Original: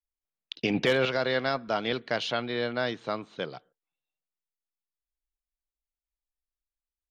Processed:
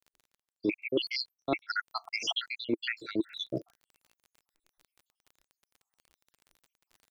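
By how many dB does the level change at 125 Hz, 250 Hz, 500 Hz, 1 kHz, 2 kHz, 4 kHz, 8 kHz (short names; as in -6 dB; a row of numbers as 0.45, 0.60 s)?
-10.0 dB, -2.0 dB, -8.5 dB, -7.5 dB, -4.5 dB, -1.0 dB, n/a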